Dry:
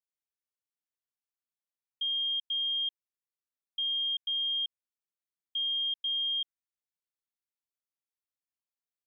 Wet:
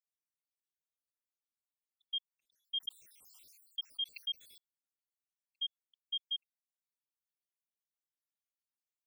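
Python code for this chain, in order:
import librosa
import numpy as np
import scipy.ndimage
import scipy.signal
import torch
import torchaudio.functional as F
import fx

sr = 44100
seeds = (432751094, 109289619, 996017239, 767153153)

y = fx.spec_dropout(x, sr, seeds[0], share_pct=76)
y = fx.high_shelf(y, sr, hz=3100.0, db=9.0)
y = fx.sustainer(y, sr, db_per_s=37.0, at=(2.33, 4.58))
y = F.gain(torch.from_numpy(y), -7.5).numpy()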